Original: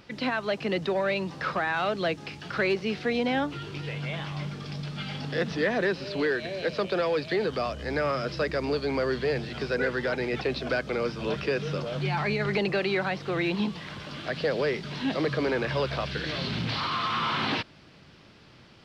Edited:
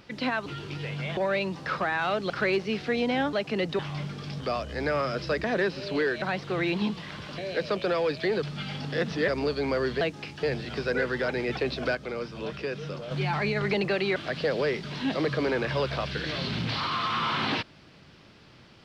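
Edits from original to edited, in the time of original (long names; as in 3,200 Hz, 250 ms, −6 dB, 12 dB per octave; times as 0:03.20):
0:00.46–0:00.92: swap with 0:03.50–0:04.21
0:02.05–0:02.47: move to 0:09.27
0:04.82–0:05.68: swap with 0:07.50–0:08.54
0:10.79–0:11.95: clip gain −5 dB
0:13.00–0:14.16: move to 0:06.46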